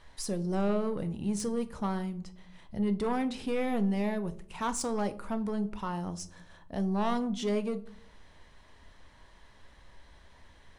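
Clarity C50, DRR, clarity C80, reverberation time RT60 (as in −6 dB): 17.0 dB, 10.0 dB, 21.0 dB, 0.60 s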